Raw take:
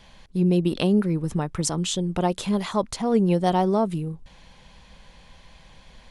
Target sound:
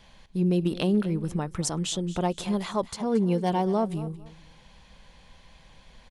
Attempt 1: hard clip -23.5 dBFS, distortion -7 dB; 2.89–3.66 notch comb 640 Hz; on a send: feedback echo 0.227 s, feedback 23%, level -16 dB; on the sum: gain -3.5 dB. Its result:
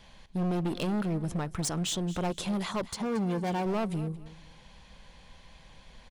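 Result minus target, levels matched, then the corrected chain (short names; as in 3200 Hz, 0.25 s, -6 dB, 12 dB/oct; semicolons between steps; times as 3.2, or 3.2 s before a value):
hard clip: distortion +25 dB
hard clip -12 dBFS, distortion -32 dB; 2.89–3.66 notch comb 640 Hz; on a send: feedback echo 0.227 s, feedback 23%, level -16 dB; on the sum: gain -3.5 dB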